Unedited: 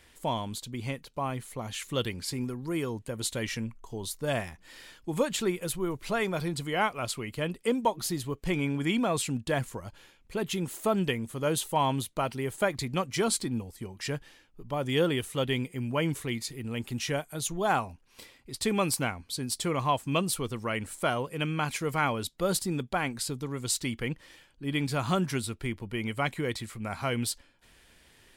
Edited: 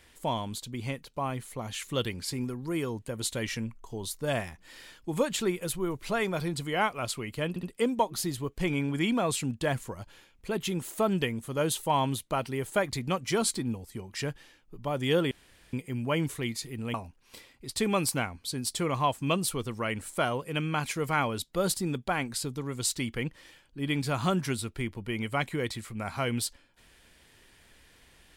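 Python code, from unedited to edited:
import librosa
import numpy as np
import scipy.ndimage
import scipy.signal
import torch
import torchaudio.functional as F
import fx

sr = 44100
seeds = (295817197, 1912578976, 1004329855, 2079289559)

y = fx.edit(x, sr, fx.stutter(start_s=7.49, slice_s=0.07, count=3),
    fx.room_tone_fill(start_s=15.17, length_s=0.42),
    fx.cut(start_s=16.8, length_s=0.99), tone=tone)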